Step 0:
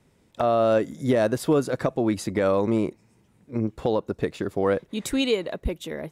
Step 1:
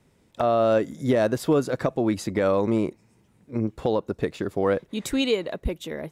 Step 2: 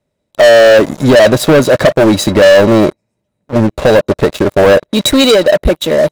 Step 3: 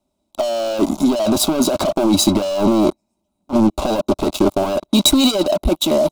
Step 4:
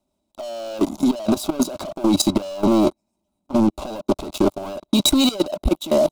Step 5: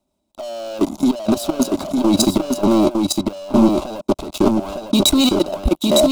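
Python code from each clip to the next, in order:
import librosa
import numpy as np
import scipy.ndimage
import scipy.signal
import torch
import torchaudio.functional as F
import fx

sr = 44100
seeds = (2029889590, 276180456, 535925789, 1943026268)

y1 = fx.dynamic_eq(x, sr, hz=9600.0, q=3.2, threshold_db=-57.0, ratio=4.0, max_db=-4)
y2 = fx.small_body(y1, sr, hz=(600.0, 3900.0), ring_ms=55, db=16)
y2 = fx.leveller(y2, sr, passes=5)
y3 = fx.over_compress(y2, sr, threshold_db=-10.0, ratio=-1.0)
y3 = fx.fixed_phaser(y3, sr, hz=480.0, stages=6)
y3 = y3 * librosa.db_to_amplitude(-1.5)
y4 = fx.level_steps(y3, sr, step_db=15)
y5 = y4 + 10.0 ** (-3.5 / 20.0) * np.pad(y4, (int(907 * sr / 1000.0), 0))[:len(y4)]
y5 = y5 * librosa.db_to_amplitude(2.0)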